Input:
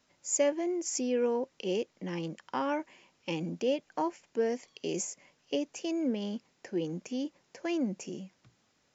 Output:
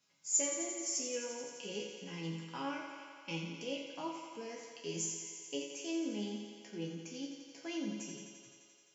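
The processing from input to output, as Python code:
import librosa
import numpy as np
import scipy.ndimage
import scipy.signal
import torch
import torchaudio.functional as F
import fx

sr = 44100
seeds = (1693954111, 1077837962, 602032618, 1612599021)

y = scipy.signal.sosfilt(scipy.signal.butter(2, 120.0, 'highpass', fs=sr, output='sos'), x)
y = fx.peak_eq(y, sr, hz=530.0, db=-9.0, octaves=2.8)
y = fx.notch(y, sr, hz=1800.0, q=11.0)
y = fx.resonator_bank(y, sr, root=49, chord='minor', decay_s=0.38)
y = fx.echo_thinned(y, sr, ms=86, feedback_pct=80, hz=190.0, wet_db=-7.0)
y = y * 10.0 ** (14.0 / 20.0)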